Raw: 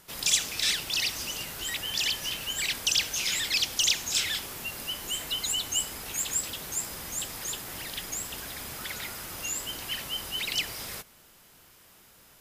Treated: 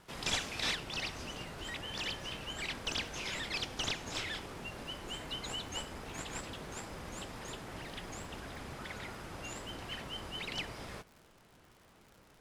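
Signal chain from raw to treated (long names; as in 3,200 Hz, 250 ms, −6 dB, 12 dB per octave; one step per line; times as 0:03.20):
variable-slope delta modulation 64 kbit/s
low-pass filter 1,700 Hz 6 dB per octave, from 0:00.75 1,000 Hz
surface crackle 110 per second −49 dBFS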